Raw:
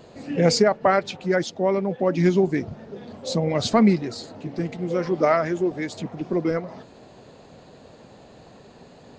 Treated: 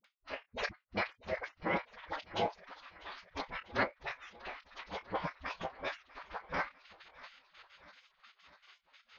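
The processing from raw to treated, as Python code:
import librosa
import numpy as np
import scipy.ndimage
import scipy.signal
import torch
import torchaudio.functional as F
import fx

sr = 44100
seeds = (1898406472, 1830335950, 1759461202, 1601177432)

y = fx.step_gate(x, sr, bpm=194, pattern='x..xx..x.', floor_db=-60.0, edge_ms=4.5)
y = fx.doubler(y, sr, ms=26.0, db=-11.0)
y = fx.echo_feedback(y, sr, ms=646, feedback_pct=60, wet_db=-19.5)
y = fx.spec_gate(y, sr, threshold_db=-25, keep='weak')
y = fx.low_shelf(y, sr, hz=150.0, db=-6.5)
y = fx.pitch_keep_formants(y, sr, semitones=-6.0)
y = scipy.ndimage.gaussian_filter1d(y, 2.3, mode='constant')
y = fx.peak_eq(y, sr, hz=550.0, db=3.5, octaves=0.34)
y = fx.dispersion(y, sr, late='highs', ms=44.0, hz=480.0)
y = fx.end_taper(y, sr, db_per_s=320.0)
y = F.gain(torch.from_numpy(y), 10.5).numpy()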